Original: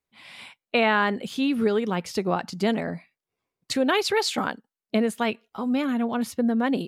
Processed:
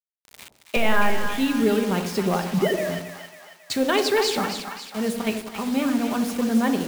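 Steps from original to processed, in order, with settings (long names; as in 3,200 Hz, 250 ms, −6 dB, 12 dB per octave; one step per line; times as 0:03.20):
0:02.43–0:02.89: three sine waves on the formant tracks
0:04.45–0:05.27: volume swells 135 ms
hard clipping −15 dBFS, distortion −22 dB
0:00.76–0:01.38: linear-prediction vocoder at 8 kHz pitch kept
convolution reverb RT60 0.90 s, pre-delay 5 ms, DRR 6.5 dB
bit-depth reduction 6 bits, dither none
echo with a time of its own for lows and highs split 770 Hz, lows 86 ms, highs 273 ms, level −7.5 dB
feedback echo with a swinging delay time 147 ms, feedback 50%, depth 137 cents, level −23.5 dB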